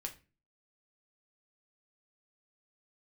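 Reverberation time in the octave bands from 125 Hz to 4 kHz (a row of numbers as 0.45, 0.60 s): 0.50, 0.50, 0.35, 0.30, 0.30, 0.25 s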